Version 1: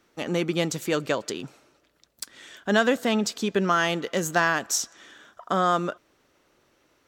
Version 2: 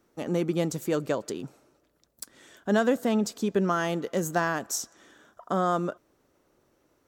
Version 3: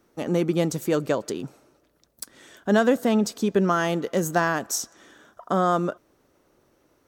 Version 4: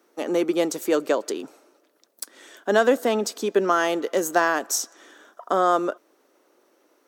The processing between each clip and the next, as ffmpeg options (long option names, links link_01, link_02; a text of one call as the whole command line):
ffmpeg -i in.wav -af "equalizer=frequency=2900:width_type=o:width=2.5:gain=-10.5" out.wav
ffmpeg -i in.wav -af "bandreject=frequency=7300:width=18,volume=4dB" out.wav
ffmpeg -i in.wav -af "highpass=frequency=290:width=0.5412,highpass=frequency=290:width=1.3066,volume=2.5dB" out.wav